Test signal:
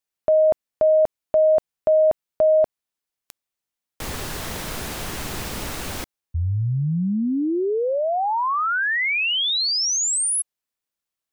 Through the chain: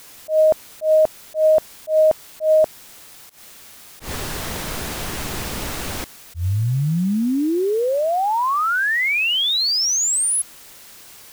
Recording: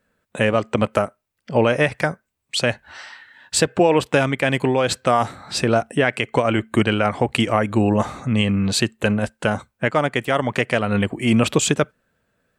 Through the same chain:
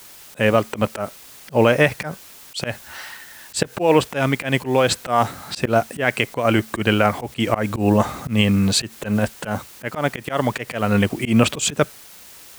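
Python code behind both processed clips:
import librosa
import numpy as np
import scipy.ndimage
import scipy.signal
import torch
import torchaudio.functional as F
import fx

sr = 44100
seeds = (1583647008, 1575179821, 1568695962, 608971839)

p1 = fx.quant_dither(x, sr, seeds[0], bits=6, dither='triangular')
p2 = x + (p1 * librosa.db_to_amplitude(-6.0))
p3 = fx.auto_swell(p2, sr, attack_ms=120.0)
y = p3 * librosa.db_to_amplitude(-1.0)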